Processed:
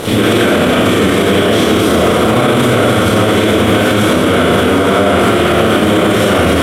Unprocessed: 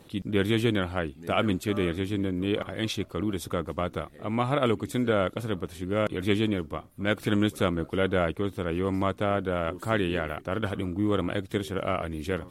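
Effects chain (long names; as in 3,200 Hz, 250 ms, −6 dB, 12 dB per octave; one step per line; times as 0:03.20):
compressor on every frequency bin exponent 0.4
high-shelf EQ 5,500 Hz +6 dB
phase-vocoder stretch with locked phases 0.53×
convolution reverb RT60 1.9 s, pre-delay 25 ms, DRR −9 dB
boost into a limiter +10 dB
level −1 dB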